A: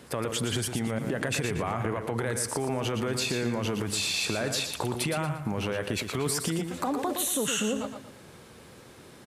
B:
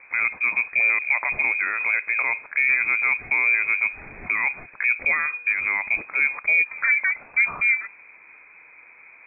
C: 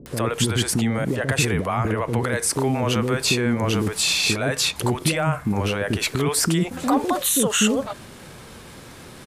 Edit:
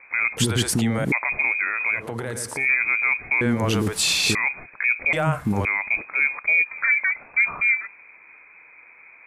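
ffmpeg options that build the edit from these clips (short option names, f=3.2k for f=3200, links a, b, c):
-filter_complex "[2:a]asplit=3[a][b][c];[1:a]asplit=5[d][e][f][g][h];[d]atrim=end=0.372[i];[a]atrim=start=0.368:end=1.122[j];[e]atrim=start=1.118:end=2.06[k];[0:a]atrim=start=1.9:end=2.68[l];[f]atrim=start=2.52:end=3.412[m];[b]atrim=start=3.408:end=4.352[n];[g]atrim=start=4.348:end=5.132[o];[c]atrim=start=5.128:end=5.652[p];[h]atrim=start=5.648[q];[i][j]acrossfade=d=0.004:c1=hsin:c2=hsin[r];[r][k]acrossfade=d=0.004:c1=hsin:c2=hsin[s];[s][l]acrossfade=d=0.16:c1=tri:c2=tri[t];[t][m]acrossfade=d=0.16:c1=tri:c2=tri[u];[u][n]acrossfade=d=0.004:c1=hsin:c2=hsin[v];[v][o]acrossfade=d=0.004:c1=hsin:c2=hsin[w];[w][p]acrossfade=d=0.004:c1=hsin:c2=hsin[x];[x][q]acrossfade=d=0.004:c1=hsin:c2=hsin"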